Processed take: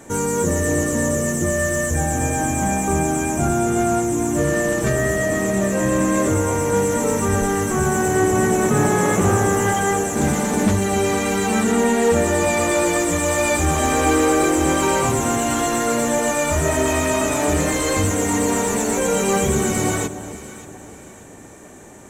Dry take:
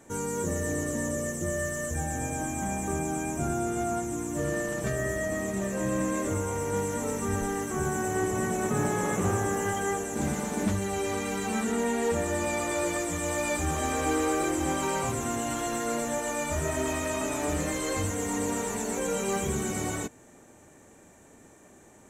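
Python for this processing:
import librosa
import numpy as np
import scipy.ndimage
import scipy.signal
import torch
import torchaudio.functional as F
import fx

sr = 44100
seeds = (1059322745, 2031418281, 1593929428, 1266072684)

p1 = np.clip(10.0 ** (34.5 / 20.0) * x, -1.0, 1.0) / 10.0 ** (34.5 / 20.0)
p2 = x + (p1 * 10.0 ** (-9.0 / 20.0))
p3 = fx.echo_alternate(p2, sr, ms=291, hz=1000.0, feedback_pct=61, wet_db=-11.0)
y = p3 * 10.0 ** (9.0 / 20.0)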